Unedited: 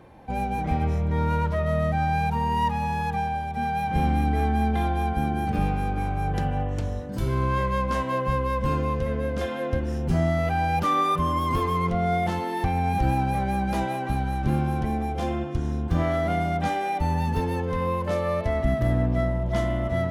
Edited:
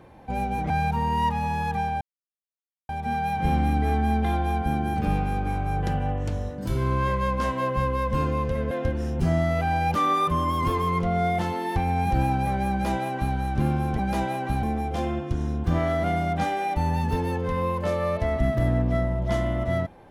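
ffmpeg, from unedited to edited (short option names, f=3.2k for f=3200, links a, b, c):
-filter_complex "[0:a]asplit=6[a][b][c][d][e][f];[a]atrim=end=0.702[g];[b]atrim=start=2.088:end=3.4,asetpts=PTS-STARTPTS,afade=t=out:st=1.308:d=0.004:c=hsin,apad=pad_dur=0.88[h];[c]atrim=start=3.4:end=9.222,asetpts=PTS-STARTPTS,afade=t=in:d=0.004:c=hsin[i];[d]atrim=start=9.588:end=14.872[j];[e]atrim=start=13.588:end=14.232[k];[f]atrim=start=14.868[l];[h][i]concat=n=2:v=0:a=1[m];[g][m]acrossfade=d=0.004:c1=hsin:c2=hsin[n];[n][j]acrossfade=d=0.004:c1=hsin:c2=hsin[o];[o][k]acrossfade=d=0.004:c1=hsin:c2=hsin[p];[p][l]acrossfade=d=0.004:c1=hsin:c2=hsin"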